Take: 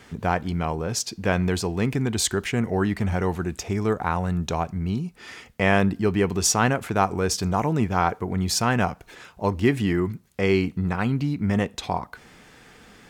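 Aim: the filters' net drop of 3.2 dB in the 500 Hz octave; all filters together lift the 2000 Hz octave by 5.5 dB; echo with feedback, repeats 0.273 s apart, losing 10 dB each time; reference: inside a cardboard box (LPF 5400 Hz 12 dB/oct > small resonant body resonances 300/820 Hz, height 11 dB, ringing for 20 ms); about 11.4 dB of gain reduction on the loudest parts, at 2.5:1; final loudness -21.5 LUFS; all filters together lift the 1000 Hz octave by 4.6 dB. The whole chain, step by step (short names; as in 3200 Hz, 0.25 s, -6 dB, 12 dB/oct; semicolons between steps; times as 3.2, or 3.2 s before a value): bell 500 Hz -6.5 dB; bell 1000 Hz +7 dB; bell 2000 Hz +5 dB; compressor 2.5:1, threshold -29 dBFS; LPF 5400 Hz 12 dB/oct; feedback echo 0.273 s, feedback 32%, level -10 dB; small resonant body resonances 300/820 Hz, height 11 dB, ringing for 20 ms; gain +4.5 dB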